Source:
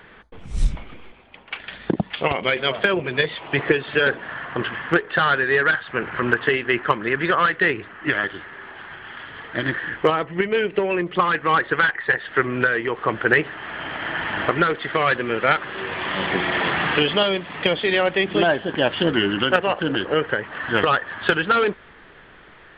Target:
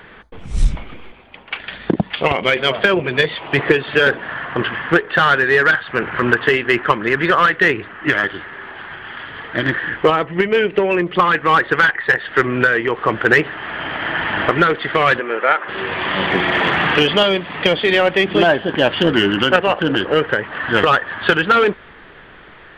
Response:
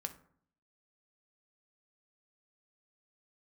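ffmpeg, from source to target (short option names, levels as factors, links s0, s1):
-filter_complex "[0:a]asplit=2[s0][s1];[s1]asoftclip=type=hard:threshold=0.188,volume=0.501[s2];[s0][s2]amix=inputs=2:normalize=0,asplit=3[s3][s4][s5];[s3]afade=t=out:st=15.19:d=0.02[s6];[s4]highpass=430,lowpass=2000,afade=t=in:st=15.19:d=0.02,afade=t=out:st=15.67:d=0.02[s7];[s5]afade=t=in:st=15.67:d=0.02[s8];[s6][s7][s8]amix=inputs=3:normalize=0,volume=1.26"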